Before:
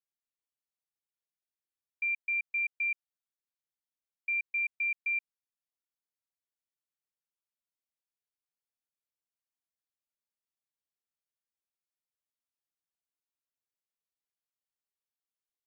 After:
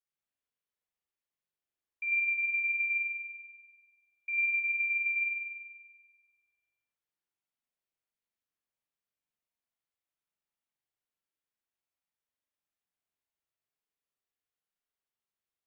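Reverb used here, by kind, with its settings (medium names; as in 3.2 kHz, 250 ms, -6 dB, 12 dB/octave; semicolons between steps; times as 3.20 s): spring tank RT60 1.5 s, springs 42 ms, chirp 75 ms, DRR -6 dB; trim -4.5 dB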